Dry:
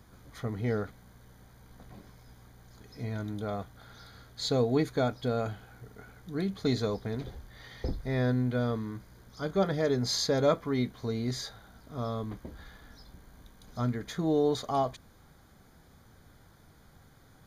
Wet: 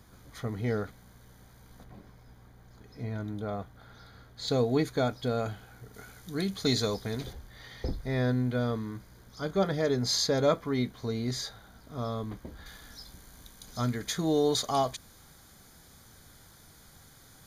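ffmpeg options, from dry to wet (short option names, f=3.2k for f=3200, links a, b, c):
-af "asetnsamples=n=441:p=0,asendcmd='1.84 equalizer g -5.5;4.48 equalizer g 4;5.94 equalizer g 12.5;7.33 equalizer g 3;12.66 equalizer g 13',equalizer=f=9.4k:t=o:w=2.9:g=3.5"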